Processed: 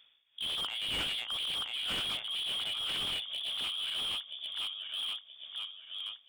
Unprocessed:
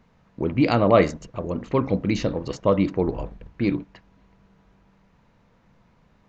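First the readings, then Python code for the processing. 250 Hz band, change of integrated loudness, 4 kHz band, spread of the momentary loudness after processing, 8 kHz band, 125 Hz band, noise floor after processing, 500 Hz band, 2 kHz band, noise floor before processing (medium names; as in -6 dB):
-31.0 dB, -10.5 dB, +12.5 dB, 8 LU, no reading, -28.0 dB, -66 dBFS, -30.0 dB, -5.5 dB, -61 dBFS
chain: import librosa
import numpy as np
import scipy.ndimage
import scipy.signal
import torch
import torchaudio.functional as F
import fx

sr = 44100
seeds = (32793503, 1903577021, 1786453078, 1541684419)

y = fx.reverse_delay_fb(x, sr, ms=488, feedback_pct=66, wet_db=-1)
y = fx.low_shelf(y, sr, hz=160.0, db=2.0)
y = y * (1.0 - 0.79 / 2.0 + 0.79 / 2.0 * np.cos(2.0 * np.pi * 2.0 * (np.arange(len(y)) / sr)))
y = fx.freq_invert(y, sr, carrier_hz=3500)
y = fx.slew_limit(y, sr, full_power_hz=120.0)
y = F.gain(torch.from_numpy(y), -5.0).numpy()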